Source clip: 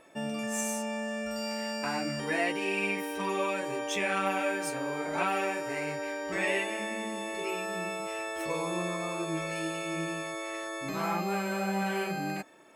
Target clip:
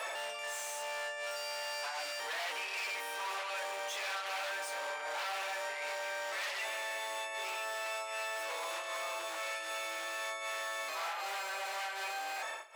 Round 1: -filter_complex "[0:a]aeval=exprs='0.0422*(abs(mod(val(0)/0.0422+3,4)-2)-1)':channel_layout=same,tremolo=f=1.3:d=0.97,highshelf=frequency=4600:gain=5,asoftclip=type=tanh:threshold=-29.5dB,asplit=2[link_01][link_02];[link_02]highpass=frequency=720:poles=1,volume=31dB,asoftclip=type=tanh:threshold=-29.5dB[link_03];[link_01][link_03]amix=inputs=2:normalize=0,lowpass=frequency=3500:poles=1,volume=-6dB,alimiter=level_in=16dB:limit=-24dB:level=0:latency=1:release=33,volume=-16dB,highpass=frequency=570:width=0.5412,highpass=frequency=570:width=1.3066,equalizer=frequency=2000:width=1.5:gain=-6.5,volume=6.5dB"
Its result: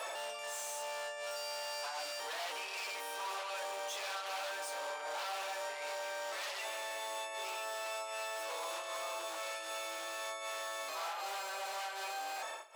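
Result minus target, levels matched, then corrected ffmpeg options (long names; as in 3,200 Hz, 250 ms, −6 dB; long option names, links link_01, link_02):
2,000 Hz band −2.5 dB
-filter_complex "[0:a]aeval=exprs='0.0422*(abs(mod(val(0)/0.0422+3,4)-2)-1)':channel_layout=same,tremolo=f=1.3:d=0.97,highshelf=frequency=4600:gain=5,asoftclip=type=tanh:threshold=-29.5dB,asplit=2[link_01][link_02];[link_02]highpass=frequency=720:poles=1,volume=31dB,asoftclip=type=tanh:threshold=-29.5dB[link_03];[link_01][link_03]amix=inputs=2:normalize=0,lowpass=frequency=3500:poles=1,volume=-6dB,alimiter=level_in=16dB:limit=-24dB:level=0:latency=1:release=33,volume=-16dB,highpass=frequency=570:width=0.5412,highpass=frequency=570:width=1.3066,volume=6.5dB"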